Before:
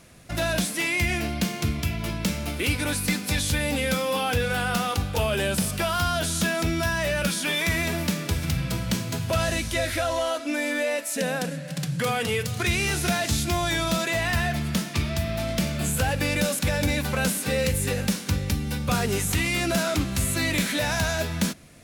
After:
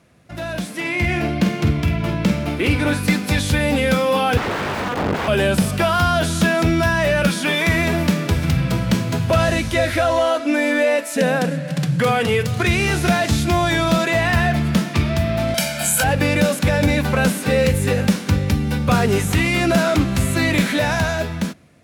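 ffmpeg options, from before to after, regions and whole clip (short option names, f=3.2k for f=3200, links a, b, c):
-filter_complex "[0:a]asettb=1/sr,asplit=3[a][b][c];[a]atrim=end=0.804[d];[b]atrim=start=0.8:end=3.03,asetpts=PTS-STARTPTS,afade=t=in:d=0.004:c=qsin,afade=t=out:st=2.226:d=0.004:c=qsin,highshelf=f=4.8k:g=-6.5,asoftclip=type=hard:threshold=-17dB,asplit=2[e][f];[f]adelay=48,volume=-9dB[g];[e][g]amix=inputs=2:normalize=0,atrim=end_sample=98343[h];[c]atrim=start=3.026[i];[d][h]acrossfade=d=0.004:c1=hsin:c2=qsin[j];[j][i]acrossfade=d=0.004:c1=qsin:c2=hsin,asettb=1/sr,asplit=3[k][l][m];[k]atrim=end=4.374[n];[l]atrim=start=4.37:end=5.28,asetpts=PTS-STARTPTS,afade=t=in:d=0.004:c=qsin,afade=t=out:st=0.906:d=0.004:c=qsin,lowshelf=f=290:g=8.5,aeval=exprs='(mod(11.9*val(0)+1,2)-1)/11.9':c=same,lowpass=f=1.8k:p=1[o];[m]atrim=start=5.276[p];[n][o]acrossfade=d=0.004:c1=hsin:c2=qsin[q];[q][p]acrossfade=d=0.004:c1=qsin:c2=hsin,asettb=1/sr,asplit=3[r][s][t];[r]atrim=end=15.544[u];[s]atrim=start=15.54:end=16.04,asetpts=PTS-STARTPTS,afade=t=in:d=0.004:c=qsin,afade=t=out:st=0.496:d=0.004:c=qsin,highpass=f=750:p=1,equalizer=f=11k:w=0.4:g=11,aecho=1:1:1.3:0.79,atrim=end_sample=22050[v];[t]atrim=start=16.036[w];[u][v]acrossfade=d=0.004:c1=hsin:c2=qsin[x];[x][w]acrossfade=d=0.004:c1=qsin:c2=hsin,highpass=70,highshelf=f=3.5k:g=-11,dynaudnorm=f=200:g=9:m=12.5dB,volume=-2dB"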